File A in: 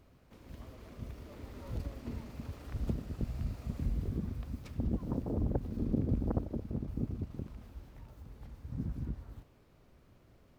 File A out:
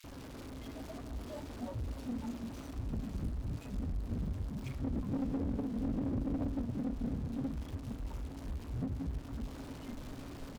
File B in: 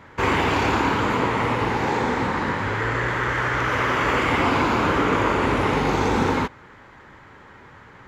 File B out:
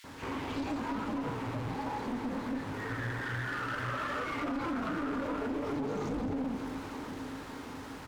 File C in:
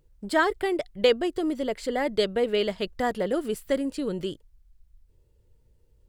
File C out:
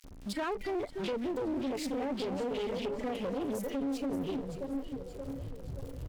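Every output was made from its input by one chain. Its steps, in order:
converter with a step at zero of −25 dBFS
high-shelf EQ 8,600 Hz −5 dB
on a send: delay that swaps between a low-pass and a high-pass 288 ms, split 850 Hz, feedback 76%, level −5 dB
on the sum: noise reduction from a noise print of the clip's start 12 dB
parametric band 270 Hz +11.5 dB 0.21 octaves
multiband delay without the direct sound highs, lows 40 ms, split 2,000 Hz
brickwall limiter −15.5 dBFS
downward compressor 1.5 to 1, threshold −29 dBFS
asymmetric clip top −30 dBFS
highs frequency-modulated by the lows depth 0.22 ms
level −5.5 dB

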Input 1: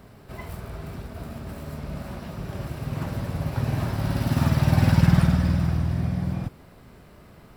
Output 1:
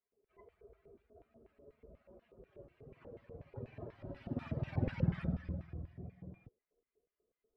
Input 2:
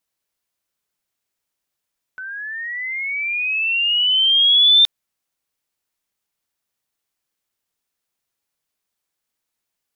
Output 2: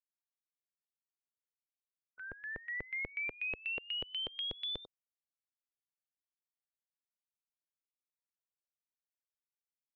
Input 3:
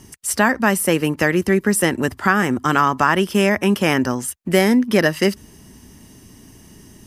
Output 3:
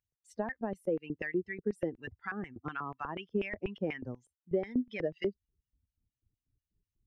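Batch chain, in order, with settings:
spectral dynamics exaggerated over time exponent 2
auto-filter band-pass square 4.1 Hz 470–2,300 Hz
downward compressor 2.5 to 1, threshold −30 dBFS
RIAA equalisation playback
level −4.5 dB

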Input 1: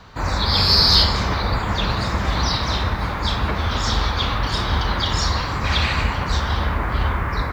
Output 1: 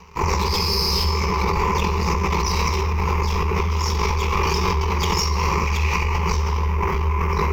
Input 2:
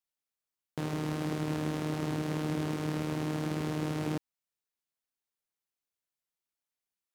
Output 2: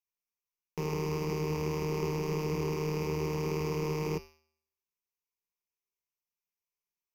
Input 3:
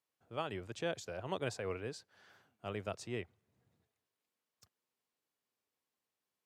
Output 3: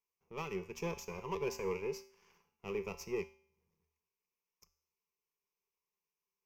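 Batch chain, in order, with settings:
gain on one half-wave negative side −12 dB
tuned comb filter 78 Hz, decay 0.69 s, harmonics odd, mix 70%
dynamic equaliser 370 Hz, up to +5 dB, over −54 dBFS, Q 1.6
notch filter 4,400 Hz, Q 29
leveller curve on the samples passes 1
EQ curve with evenly spaced ripples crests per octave 0.79, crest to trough 17 dB
in parallel at +2 dB: compressor whose output falls as the input rises −27 dBFS, ratio −0.5
on the sum: level −1.5 dB

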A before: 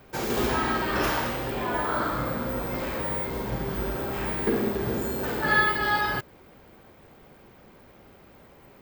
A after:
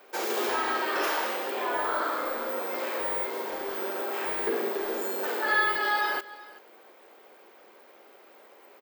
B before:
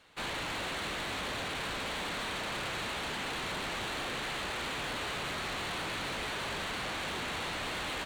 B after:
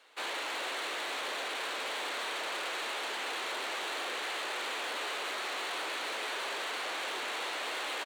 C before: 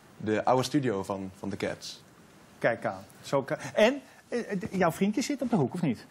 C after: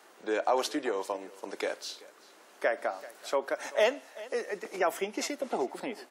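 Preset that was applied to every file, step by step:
high-pass filter 360 Hz 24 dB per octave
single-tap delay 383 ms −21 dB
in parallel at 0 dB: brickwall limiter −21 dBFS
on the sum: level −5.5 dB

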